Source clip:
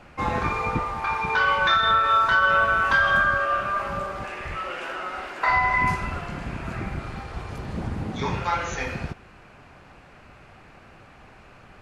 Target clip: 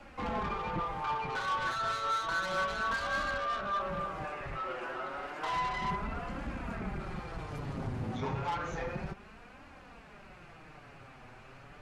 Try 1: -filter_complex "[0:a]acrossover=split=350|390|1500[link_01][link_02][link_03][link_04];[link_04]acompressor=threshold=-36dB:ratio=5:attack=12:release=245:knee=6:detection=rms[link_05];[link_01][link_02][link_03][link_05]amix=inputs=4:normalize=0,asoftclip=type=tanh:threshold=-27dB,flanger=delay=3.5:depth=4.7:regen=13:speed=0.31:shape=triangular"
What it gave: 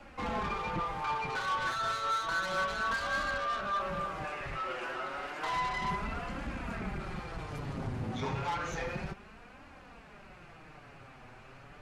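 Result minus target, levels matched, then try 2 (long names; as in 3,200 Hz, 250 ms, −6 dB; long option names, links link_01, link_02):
downward compressor: peak gain reduction −7 dB
-filter_complex "[0:a]acrossover=split=350|390|1500[link_01][link_02][link_03][link_04];[link_04]acompressor=threshold=-45dB:ratio=5:attack=12:release=245:knee=6:detection=rms[link_05];[link_01][link_02][link_03][link_05]amix=inputs=4:normalize=0,asoftclip=type=tanh:threshold=-27dB,flanger=delay=3.5:depth=4.7:regen=13:speed=0.31:shape=triangular"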